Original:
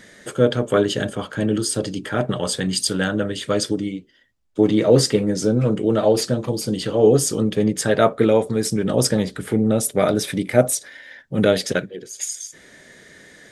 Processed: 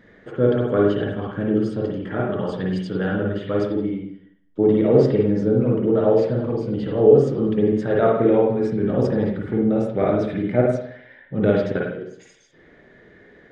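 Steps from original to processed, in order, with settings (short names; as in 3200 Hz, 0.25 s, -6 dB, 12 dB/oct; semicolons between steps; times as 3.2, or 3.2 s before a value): tape spacing loss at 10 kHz 40 dB; reverb RT60 0.65 s, pre-delay 48 ms, DRR -2.5 dB; gain -2.5 dB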